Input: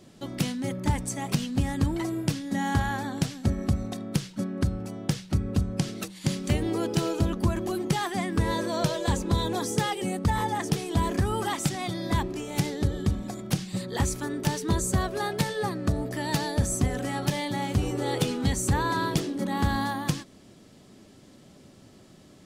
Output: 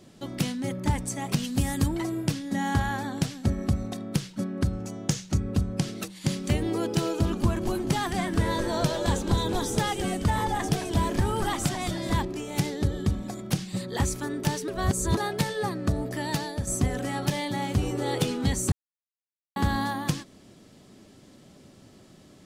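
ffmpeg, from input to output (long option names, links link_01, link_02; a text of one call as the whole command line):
ffmpeg -i in.wav -filter_complex "[0:a]asplit=3[link_01][link_02][link_03];[link_01]afade=type=out:start_time=1.43:duration=0.02[link_04];[link_02]aemphasis=mode=production:type=50kf,afade=type=in:start_time=1.43:duration=0.02,afade=type=out:start_time=1.87:duration=0.02[link_05];[link_03]afade=type=in:start_time=1.87:duration=0.02[link_06];[link_04][link_05][link_06]amix=inputs=3:normalize=0,asettb=1/sr,asplit=3[link_07][link_08][link_09];[link_07]atrim=end=4.734[link_10];[link_08]atrim=start=4.73:end=5.4,asetpts=PTS-STARTPTS,afade=type=in:duration=0.004:curve=qsin,afade=type=out:start_time=0.666:duration=0.004:curve=qsin,equalizer=frequency=6600:width=2.7:gain=10.5[link_11];[link_09]atrim=start=5.396[link_12];[link_10][link_11]acrossfade=duration=0.004:curve1=hsin:curve2=qsin[link_13];[link_13][link_12]acrossfade=duration=0.004:curve1=qsin:curve2=hsin,asettb=1/sr,asplit=3[link_14][link_15][link_16];[link_14]atrim=end=7.024[link_17];[link_15]atrim=start=7.02:end=12.25,asetpts=PTS-STARTPTS,afade=type=in:duration=0.004:curve=qsin,afade=type=out:start_time=5.226:duration=0.004:curve=qsin,asplit=7[link_18][link_19][link_20][link_21][link_22][link_23][link_24];[link_19]adelay=216,afreqshift=-100,volume=-9dB[link_25];[link_20]adelay=432,afreqshift=-200,volume=-15dB[link_26];[link_21]adelay=648,afreqshift=-300,volume=-21dB[link_27];[link_22]adelay=864,afreqshift=-400,volume=-27.1dB[link_28];[link_23]adelay=1080,afreqshift=-500,volume=-33.1dB[link_29];[link_24]adelay=1296,afreqshift=-600,volume=-39.1dB[link_30];[link_18][link_25][link_26][link_27][link_28][link_29][link_30]amix=inputs=7:normalize=0,atrim=end_sample=230643[link_31];[link_16]atrim=start=12.246[link_32];[link_17][link_31]acrossfade=duration=0.004:curve1=hsin:curve2=qsin[link_33];[link_33][link_32]acrossfade=duration=0.004:curve1=qsin:curve2=hsin,asplit=6[link_34][link_35][link_36][link_37][link_38][link_39];[link_34]atrim=end=14.682[link_40];[link_35]atrim=start=14.678:end=15.172,asetpts=PTS-STARTPTS,areverse[link_41];[link_36]atrim=start=15.168:end=16.67,asetpts=PTS-STARTPTS,afade=type=out:start_time=1.042:duration=0.46:silence=0.398107[link_42];[link_37]atrim=start=16.67:end=18.72,asetpts=PTS-STARTPTS,afade=type=in:duration=0.004:curve=hsin:silence=0.398107,afade=type=out:start_time=2.046:duration=0.004:curve=hsin[link_43];[link_38]atrim=start=18.72:end=19.56,asetpts=PTS-STARTPTS,volume=0[link_44];[link_39]atrim=start=19.56,asetpts=PTS-STARTPTS,afade=type=in:duration=0.004:curve=hsin[link_45];[link_40][link_41]acrossfade=duration=0.004:curve1=hsin:curve2=hsin[link_46];[link_42][link_43][link_44][link_45]concat=n=4:v=0:a=1[link_47];[link_46][link_47]acrossfade=duration=0.004:curve1=hsin:curve2=hsin" out.wav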